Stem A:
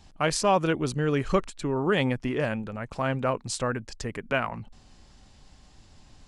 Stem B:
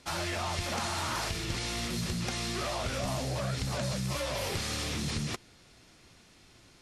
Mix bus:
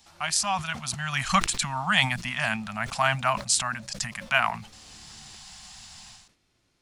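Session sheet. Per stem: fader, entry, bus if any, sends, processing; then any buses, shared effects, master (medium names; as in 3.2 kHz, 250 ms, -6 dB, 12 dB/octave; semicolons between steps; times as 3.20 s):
-3.5 dB, 0.00 s, no send, elliptic band-stop 220–690 Hz; tilt EQ +3 dB/octave; level rider gain up to 13.5 dB
-13.0 dB, 0.00 s, no send, compression 2.5:1, threshold -44 dBFS, peak gain reduction 10 dB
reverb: none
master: decay stretcher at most 130 dB/s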